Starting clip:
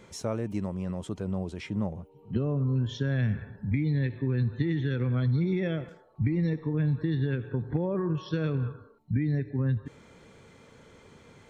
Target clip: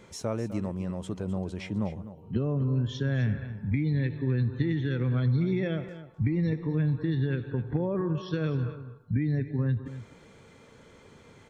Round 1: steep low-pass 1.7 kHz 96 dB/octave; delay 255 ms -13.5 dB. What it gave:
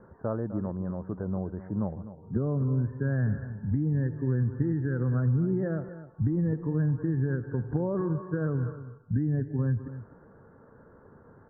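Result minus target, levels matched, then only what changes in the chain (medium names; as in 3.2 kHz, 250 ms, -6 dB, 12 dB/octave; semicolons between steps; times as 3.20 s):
2 kHz band -3.5 dB
remove: steep low-pass 1.7 kHz 96 dB/octave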